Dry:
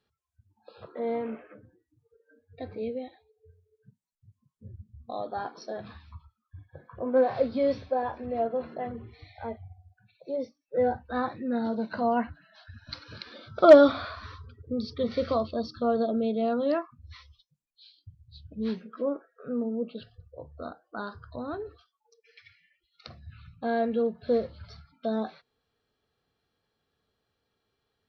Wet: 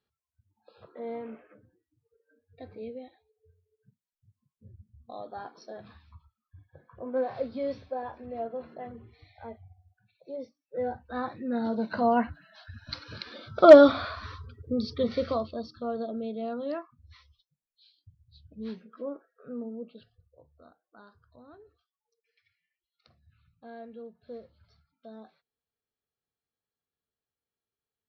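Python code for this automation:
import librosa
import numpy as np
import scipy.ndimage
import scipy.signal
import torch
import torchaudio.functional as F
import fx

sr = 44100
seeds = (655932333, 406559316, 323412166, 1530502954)

y = fx.gain(x, sr, db=fx.line((10.83, -6.5), (11.96, 2.0), (14.97, 2.0), (15.75, -7.0), (19.67, -7.0), (20.65, -17.5)))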